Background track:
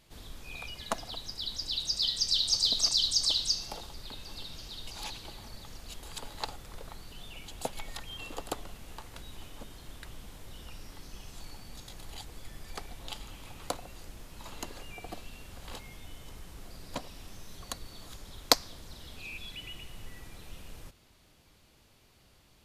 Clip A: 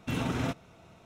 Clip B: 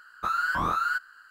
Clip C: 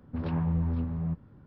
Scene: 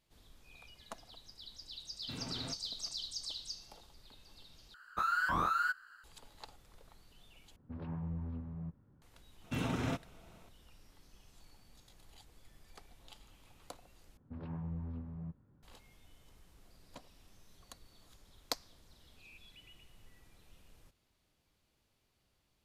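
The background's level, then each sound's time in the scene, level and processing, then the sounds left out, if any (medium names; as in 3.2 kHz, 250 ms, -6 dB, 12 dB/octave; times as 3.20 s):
background track -15 dB
2.01 s: add A -14 dB
4.74 s: replace with B -5.5 dB
7.56 s: replace with C -12 dB + low-pass 2.9 kHz 6 dB/octave
9.44 s: add A -4.5 dB
14.17 s: replace with C -13 dB + treble shelf 3.4 kHz -7 dB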